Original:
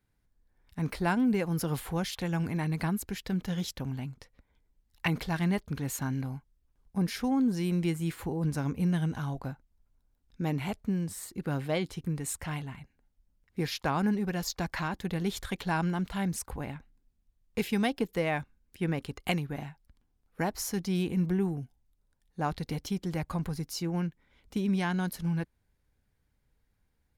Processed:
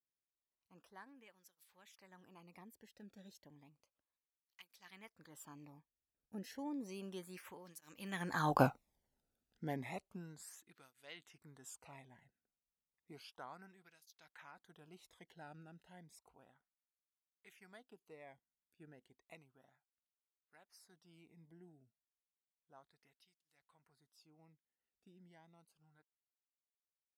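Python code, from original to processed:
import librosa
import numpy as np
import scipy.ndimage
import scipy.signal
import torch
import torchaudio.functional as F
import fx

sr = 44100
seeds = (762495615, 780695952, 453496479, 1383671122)

y = fx.doppler_pass(x, sr, speed_mps=31, closest_m=2.7, pass_at_s=8.63)
y = fx.flanger_cancel(y, sr, hz=0.32, depth_ms=1.0)
y = y * 10.0 ** (15.5 / 20.0)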